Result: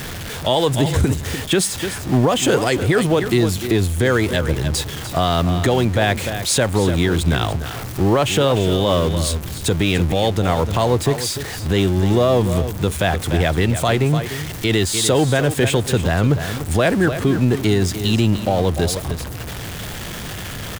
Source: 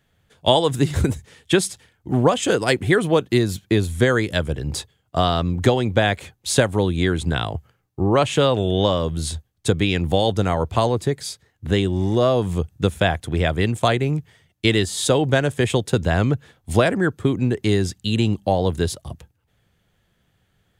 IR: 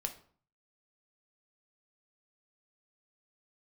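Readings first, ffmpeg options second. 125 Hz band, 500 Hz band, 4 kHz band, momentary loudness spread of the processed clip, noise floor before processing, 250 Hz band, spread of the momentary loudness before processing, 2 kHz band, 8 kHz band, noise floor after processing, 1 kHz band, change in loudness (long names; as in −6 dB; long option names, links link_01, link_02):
+3.5 dB, +1.5 dB, +3.0 dB, 8 LU, −67 dBFS, +2.5 dB, 9 LU, +2.0 dB, +6.0 dB, −30 dBFS, +1.5 dB, +2.5 dB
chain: -filter_complex "[0:a]aeval=exprs='val(0)+0.5*0.0501*sgn(val(0))':channel_layout=same,asplit=2[link_01][link_02];[link_02]aecho=0:1:296:0.251[link_03];[link_01][link_03]amix=inputs=2:normalize=0,alimiter=level_in=8.5dB:limit=-1dB:release=50:level=0:latency=1,volume=-6dB"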